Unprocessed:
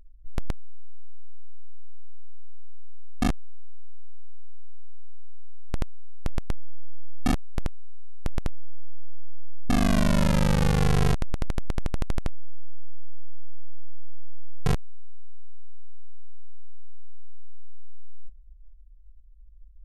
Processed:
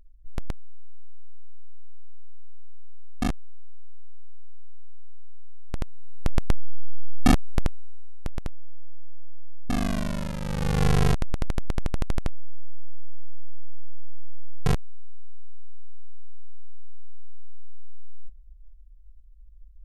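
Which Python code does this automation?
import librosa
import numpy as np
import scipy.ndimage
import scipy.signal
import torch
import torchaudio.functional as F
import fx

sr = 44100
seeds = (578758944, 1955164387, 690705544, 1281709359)

y = fx.gain(x, sr, db=fx.line((5.78, -2.0), (6.44, 6.0), (7.47, 6.0), (8.35, -3.5), (9.78, -3.5), (10.38, -11.0), (10.85, 1.0)))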